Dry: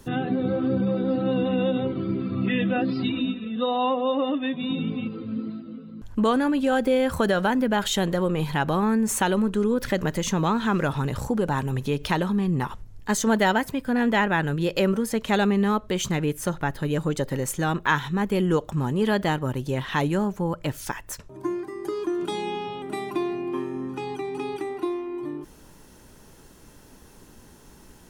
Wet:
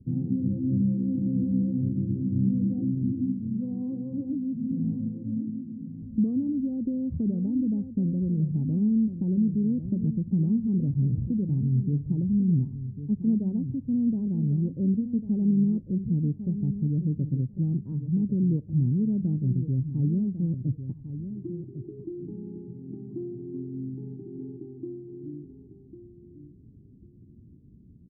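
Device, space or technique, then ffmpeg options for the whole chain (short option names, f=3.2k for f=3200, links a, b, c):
the neighbour's flat through the wall: -filter_complex "[0:a]highpass=64,lowpass=f=260:w=0.5412,lowpass=f=260:w=1.3066,equalizer=f=110:t=o:w=0.86:g=6,asplit=2[a][b];[b]adelay=1099,lowpass=f=2k:p=1,volume=-10.5dB,asplit=2[c][d];[d]adelay=1099,lowpass=f=2k:p=1,volume=0.19,asplit=2[e][f];[f]adelay=1099,lowpass=f=2k:p=1,volume=0.19[g];[a][c][e][g]amix=inputs=4:normalize=0"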